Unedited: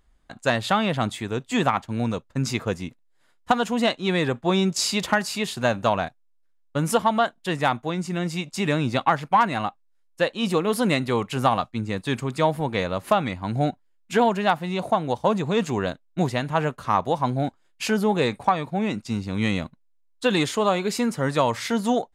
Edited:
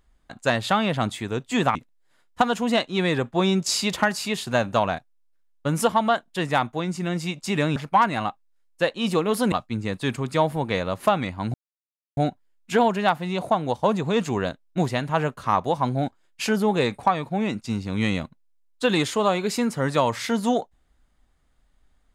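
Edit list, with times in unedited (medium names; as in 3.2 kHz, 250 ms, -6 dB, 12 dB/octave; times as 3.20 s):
1.75–2.85 s: delete
8.86–9.15 s: delete
10.91–11.56 s: delete
13.58 s: insert silence 0.63 s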